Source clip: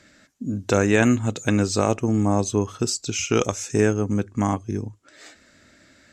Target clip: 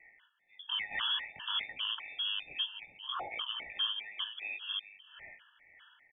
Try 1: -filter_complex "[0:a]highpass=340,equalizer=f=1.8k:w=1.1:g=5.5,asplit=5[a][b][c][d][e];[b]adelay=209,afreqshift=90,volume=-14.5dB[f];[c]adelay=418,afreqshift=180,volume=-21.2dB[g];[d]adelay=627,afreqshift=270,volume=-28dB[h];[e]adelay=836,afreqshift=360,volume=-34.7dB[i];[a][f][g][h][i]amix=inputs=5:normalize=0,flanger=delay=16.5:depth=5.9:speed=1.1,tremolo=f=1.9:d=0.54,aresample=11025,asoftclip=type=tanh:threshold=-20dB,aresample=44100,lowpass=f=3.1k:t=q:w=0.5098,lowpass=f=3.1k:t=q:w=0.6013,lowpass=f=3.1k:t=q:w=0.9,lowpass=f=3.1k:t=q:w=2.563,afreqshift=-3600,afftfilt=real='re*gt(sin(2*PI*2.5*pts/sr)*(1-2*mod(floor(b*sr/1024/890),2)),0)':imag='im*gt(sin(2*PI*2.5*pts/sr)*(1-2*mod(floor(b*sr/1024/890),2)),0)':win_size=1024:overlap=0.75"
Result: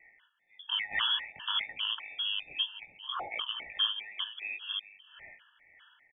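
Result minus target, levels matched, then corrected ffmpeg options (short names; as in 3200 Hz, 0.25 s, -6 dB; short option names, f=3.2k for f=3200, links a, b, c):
soft clip: distortion -5 dB
-filter_complex "[0:a]highpass=340,equalizer=f=1.8k:w=1.1:g=5.5,asplit=5[a][b][c][d][e];[b]adelay=209,afreqshift=90,volume=-14.5dB[f];[c]adelay=418,afreqshift=180,volume=-21.2dB[g];[d]adelay=627,afreqshift=270,volume=-28dB[h];[e]adelay=836,afreqshift=360,volume=-34.7dB[i];[a][f][g][h][i]amix=inputs=5:normalize=0,flanger=delay=16.5:depth=5.9:speed=1.1,tremolo=f=1.9:d=0.54,aresample=11025,asoftclip=type=tanh:threshold=-27.5dB,aresample=44100,lowpass=f=3.1k:t=q:w=0.5098,lowpass=f=3.1k:t=q:w=0.6013,lowpass=f=3.1k:t=q:w=0.9,lowpass=f=3.1k:t=q:w=2.563,afreqshift=-3600,afftfilt=real='re*gt(sin(2*PI*2.5*pts/sr)*(1-2*mod(floor(b*sr/1024/890),2)),0)':imag='im*gt(sin(2*PI*2.5*pts/sr)*(1-2*mod(floor(b*sr/1024/890),2)),0)':win_size=1024:overlap=0.75"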